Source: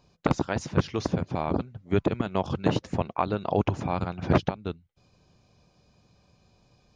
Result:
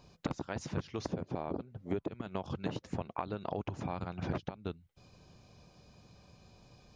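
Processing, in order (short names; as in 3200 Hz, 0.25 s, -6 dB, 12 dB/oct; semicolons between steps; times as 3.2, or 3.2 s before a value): 1.09–2.08 bell 420 Hz +7.5 dB 1.9 oct; compressor 10:1, threshold -36 dBFS, peak gain reduction 23 dB; gain +3 dB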